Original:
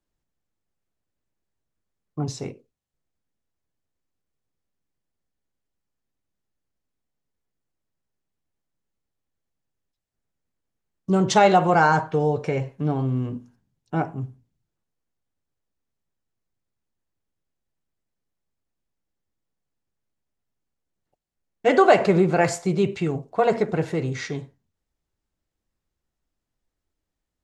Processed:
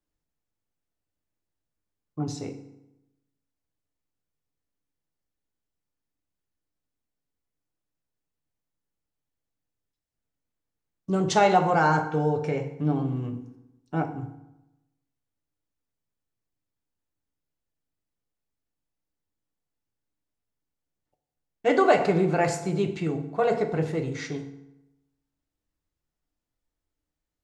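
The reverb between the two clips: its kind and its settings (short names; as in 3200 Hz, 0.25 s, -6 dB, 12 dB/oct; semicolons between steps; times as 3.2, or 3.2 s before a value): FDN reverb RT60 0.93 s, low-frequency decay 1.1×, high-frequency decay 0.7×, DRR 6.5 dB; gain -4.5 dB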